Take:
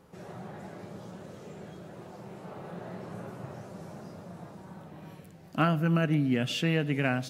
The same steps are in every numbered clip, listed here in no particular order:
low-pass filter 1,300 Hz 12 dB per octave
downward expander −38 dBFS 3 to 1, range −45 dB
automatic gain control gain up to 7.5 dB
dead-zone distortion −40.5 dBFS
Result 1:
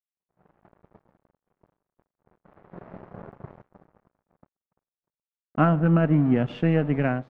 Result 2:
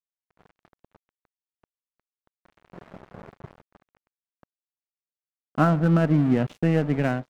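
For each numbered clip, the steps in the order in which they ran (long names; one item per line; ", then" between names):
dead-zone distortion, then automatic gain control, then downward expander, then low-pass filter
low-pass filter, then downward expander, then dead-zone distortion, then automatic gain control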